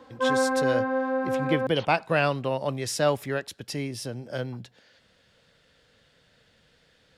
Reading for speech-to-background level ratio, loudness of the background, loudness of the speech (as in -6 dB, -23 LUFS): -2.0 dB, -26.5 LUFS, -28.5 LUFS